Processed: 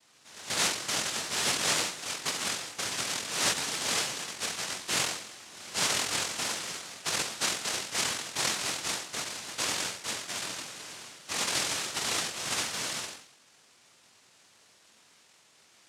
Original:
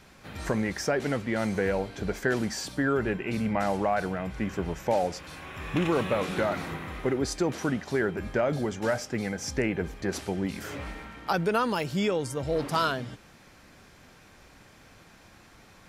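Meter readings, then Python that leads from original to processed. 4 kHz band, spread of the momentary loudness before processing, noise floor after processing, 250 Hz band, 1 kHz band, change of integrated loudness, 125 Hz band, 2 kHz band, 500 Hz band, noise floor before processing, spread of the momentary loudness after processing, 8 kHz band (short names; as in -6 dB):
+10.0 dB, 9 LU, -61 dBFS, -15.5 dB, -5.5 dB, -1.0 dB, -14.5 dB, 0.0 dB, -13.5 dB, -55 dBFS, 9 LU, +12.5 dB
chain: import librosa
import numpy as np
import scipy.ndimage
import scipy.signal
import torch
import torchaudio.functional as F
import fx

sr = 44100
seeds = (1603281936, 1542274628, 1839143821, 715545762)

y = fx.env_flanger(x, sr, rest_ms=2.4, full_db=-27.0)
y = fx.room_flutter(y, sr, wall_m=3.9, rt60_s=0.63)
y = fx.noise_vocoder(y, sr, seeds[0], bands=1)
y = y * librosa.db_to_amplitude(-6.5)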